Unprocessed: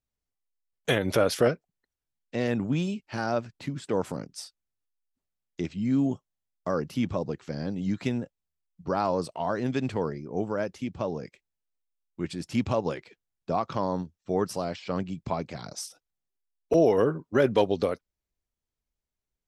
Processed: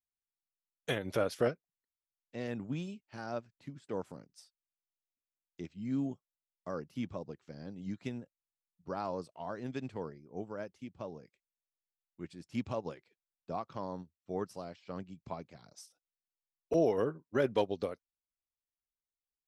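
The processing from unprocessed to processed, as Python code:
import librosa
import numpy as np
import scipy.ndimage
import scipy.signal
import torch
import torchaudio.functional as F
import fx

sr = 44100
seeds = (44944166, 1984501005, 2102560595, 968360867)

y = fx.upward_expand(x, sr, threshold_db=-42.0, expansion=1.5)
y = F.gain(torch.from_numpy(y), -7.0).numpy()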